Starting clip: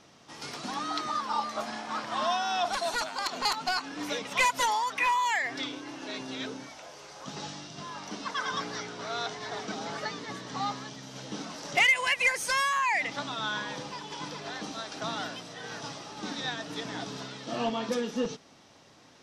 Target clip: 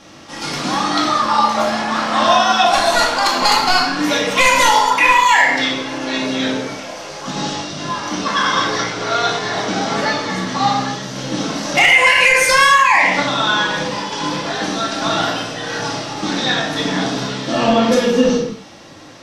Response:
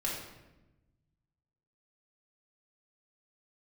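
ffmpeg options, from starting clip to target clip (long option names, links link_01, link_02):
-filter_complex "[1:a]atrim=start_sample=2205,afade=type=out:start_time=0.33:duration=0.01,atrim=end_sample=14994[link_01];[0:a][link_01]afir=irnorm=-1:irlink=0,alimiter=level_in=13.5dB:limit=-1dB:release=50:level=0:latency=1,volume=-1dB"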